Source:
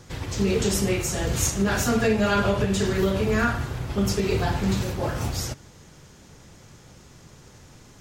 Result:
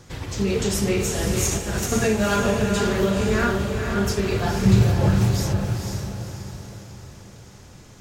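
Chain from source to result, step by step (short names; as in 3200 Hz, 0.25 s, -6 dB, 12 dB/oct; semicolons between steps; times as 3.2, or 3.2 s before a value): 1.51–1.92 negative-ratio compressor -28 dBFS, ratio -0.5; 4.65–5.16 bell 110 Hz +13.5 dB 1.5 oct; on a send: diffused feedback echo 0.492 s, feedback 47%, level -4.5 dB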